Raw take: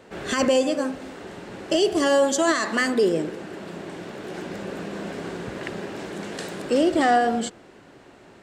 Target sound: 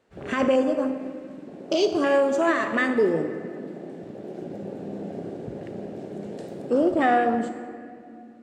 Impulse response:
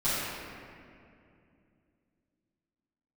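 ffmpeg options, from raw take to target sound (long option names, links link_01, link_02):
-filter_complex "[0:a]afwtdn=0.0398,asplit=2[link_01][link_02];[1:a]atrim=start_sample=2205,highshelf=frequency=4900:gain=10.5[link_03];[link_02][link_03]afir=irnorm=-1:irlink=0,volume=-20.5dB[link_04];[link_01][link_04]amix=inputs=2:normalize=0,volume=-1.5dB"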